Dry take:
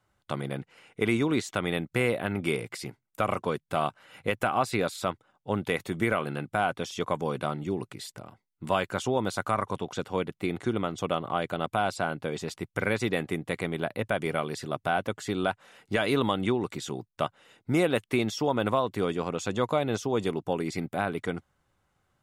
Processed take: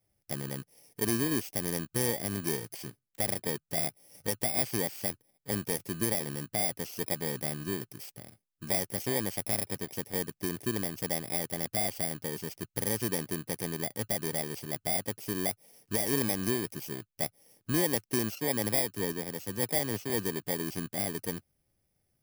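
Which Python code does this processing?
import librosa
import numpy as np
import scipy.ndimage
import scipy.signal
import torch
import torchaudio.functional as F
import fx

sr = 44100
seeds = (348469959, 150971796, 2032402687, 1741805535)

y = fx.bit_reversed(x, sr, seeds[0], block=32)
y = fx.peak_eq(y, sr, hz=1000.0, db=-7.0, octaves=0.4)
y = fx.band_widen(y, sr, depth_pct=70, at=(18.35, 20.1))
y = F.gain(torch.from_numpy(y), -3.5).numpy()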